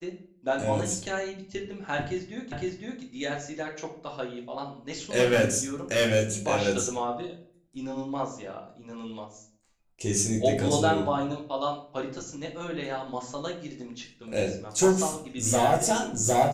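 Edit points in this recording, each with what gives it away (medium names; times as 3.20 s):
2.52 s: repeat of the last 0.51 s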